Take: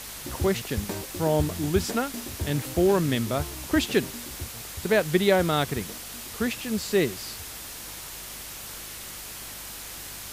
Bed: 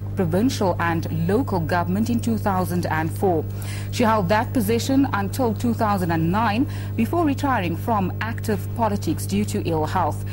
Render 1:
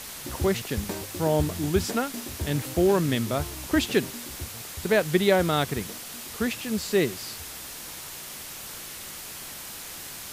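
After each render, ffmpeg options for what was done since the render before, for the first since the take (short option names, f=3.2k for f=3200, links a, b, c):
-af "bandreject=f=50:t=h:w=4,bandreject=f=100:t=h:w=4"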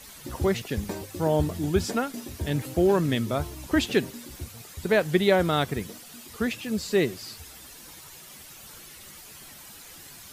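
-af "afftdn=nr=10:nf=-40"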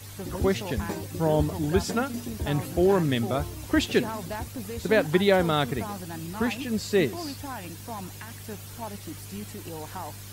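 -filter_complex "[1:a]volume=-16dB[a];[0:a][a]amix=inputs=2:normalize=0"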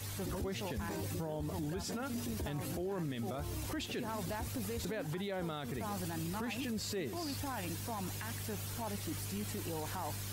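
-af "acompressor=threshold=-30dB:ratio=6,alimiter=level_in=7dB:limit=-24dB:level=0:latency=1:release=15,volume=-7dB"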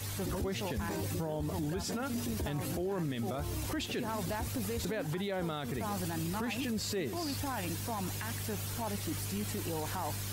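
-af "volume=3.5dB"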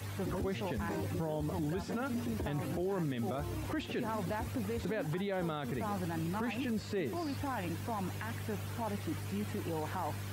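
-filter_complex "[0:a]highpass=74,acrossover=split=2800[a][b];[b]acompressor=threshold=-53dB:ratio=4:attack=1:release=60[c];[a][c]amix=inputs=2:normalize=0"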